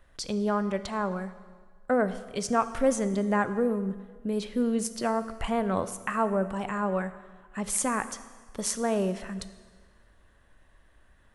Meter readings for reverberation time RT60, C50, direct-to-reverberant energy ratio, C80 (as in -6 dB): 1.5 s, 13.5 dB, 12.0 dB, 14.5 dB